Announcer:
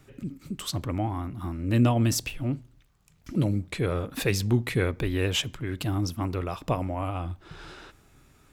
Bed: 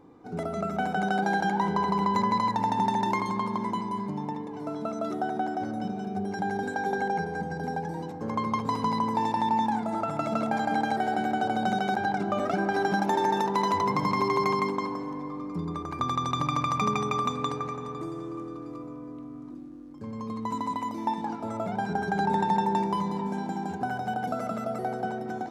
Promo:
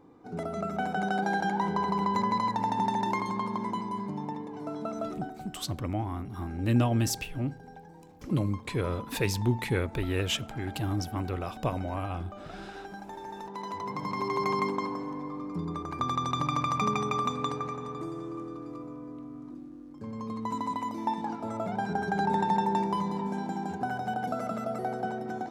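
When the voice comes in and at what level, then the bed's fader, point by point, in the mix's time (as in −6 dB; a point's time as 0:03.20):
4.95 s, −3.0 dB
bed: 0:05.04 −2.5 dB
0:05.45 −17 dB
0:13.21 −17 dB
0:14.62 −1.5 dB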